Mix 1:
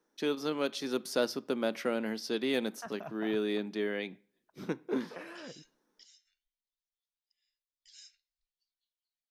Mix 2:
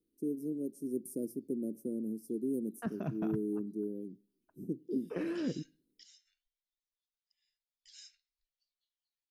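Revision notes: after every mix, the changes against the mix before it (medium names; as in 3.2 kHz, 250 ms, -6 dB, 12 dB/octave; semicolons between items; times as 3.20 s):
first voice: add elliptic band-stop 350–9400 Hz, stop band 50 dB; second voice: add resonant low shelf 490 Hz +13.5 dB, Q 1.5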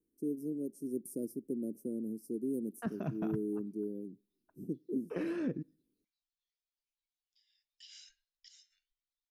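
first voice: send -8.5 dB; background: entry +2.45 s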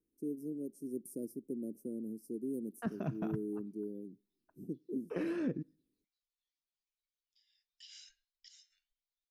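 first voice -3.0 dB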